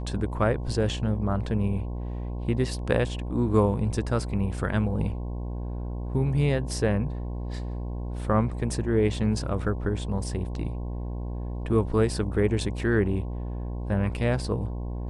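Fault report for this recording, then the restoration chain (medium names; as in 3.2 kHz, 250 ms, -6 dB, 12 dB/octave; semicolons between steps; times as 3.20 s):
buzz 60 Hz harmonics 18 -32 dBFS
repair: de-hum 60 Hz, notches 18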